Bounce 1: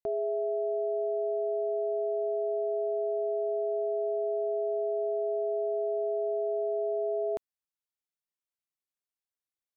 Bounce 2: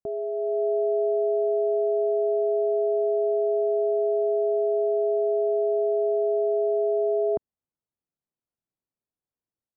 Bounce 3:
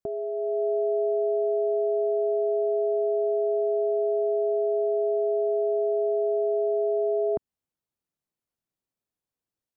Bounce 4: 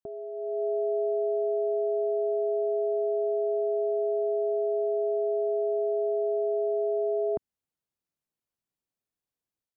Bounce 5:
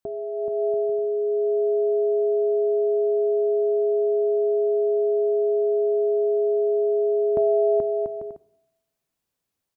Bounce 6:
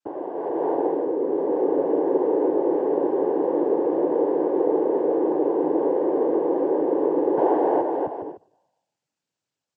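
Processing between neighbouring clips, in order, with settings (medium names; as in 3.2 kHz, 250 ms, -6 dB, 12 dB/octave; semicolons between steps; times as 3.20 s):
Bessel low-pass 770 Hz, order 2; peaking EQ 150 Hz +6.5 dB 3 oct; level rider gain up to 6.5 dB; trim -1 dB
dynamic bell 530 Hz, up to -4 dB, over -35 dBFS, Q 1; trim +2 dB
level rider gain up to 5 dB; trim -7.5 dB
bouncing-ball echo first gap 430 ms, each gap 0.6×, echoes 5; on a send at -18 dB: reverberation RT60 1.1 s, pre-delay 3 ms; on the sum: trim +7 dB
noise-vocoded speech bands 8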